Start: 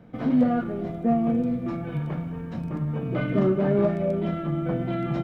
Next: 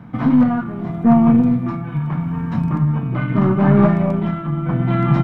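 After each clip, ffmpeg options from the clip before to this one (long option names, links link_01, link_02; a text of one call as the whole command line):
ffmpeg -i in.wav -af "aeval=exprs='0.251*(cos(1*acos(clip(val(0)/0.251,-1,1)))-cos(1*PI/2))+0.0178*(cos(4*acos(clip(val(0)/0.251,-1,1)))-cos(4*PI/2))':channel_layout=same,equalizer=frequency=125:width_type=o:width=1:gain=9,equalizer=frequency=250:width_type=o:width=1:gain=5,equalizer=frequency=500:width_type=o:width=1:gain=-9,equalizer=frequency=1000:width_type=o:width=1:gain=12,equalizer=frequency=2000:width_type=o:width=1:gain=3,tremolo=f=0.78:d=0.54,volume=5.5dB" out.wav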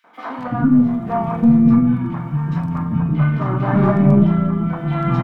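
ffmpeg -i in.wav -filter_complex "[0:a]acrossover=split=440|2400[link_01][link_02][link_03];[link_02]adelay=40[link_04];[link_01]adelay=380[link_05];[link_05][link_04][link_03]amix=inputs=3:normalize=0,volume=1dB" out.wav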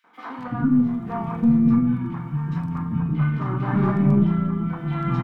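ffmpeg -i in.wav -af "equalizer=frequency=620:width_type=o:width=0.38:gain=-10,volume=-5dB" out.wav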